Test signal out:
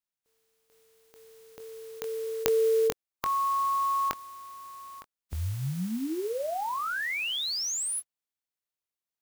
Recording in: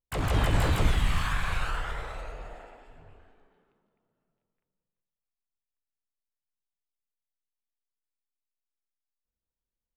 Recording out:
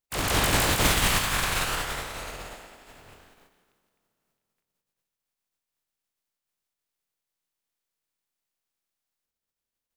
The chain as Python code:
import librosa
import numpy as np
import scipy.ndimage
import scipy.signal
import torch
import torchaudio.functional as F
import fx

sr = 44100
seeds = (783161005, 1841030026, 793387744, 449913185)

y = fx.spec_flatten(x, sr, power=0.47)
y = fx.doubler(y, sr, ms=22.0, db=-11.0)